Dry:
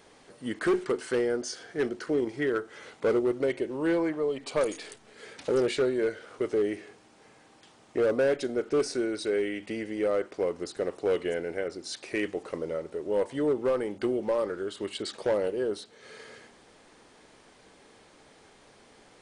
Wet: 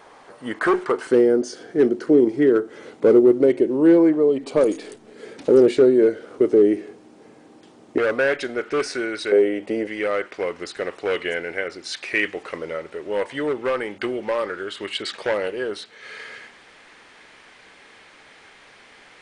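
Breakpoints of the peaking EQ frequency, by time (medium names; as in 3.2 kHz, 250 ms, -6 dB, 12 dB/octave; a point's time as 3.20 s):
peaking EQ +14 dB 2.2 oct
1 kHz
from 1.07 s 300 Hz
from 7.98 s 1.9 kHz
from 9.32 s 530 Hz
from 9.87 s 2.1 kHz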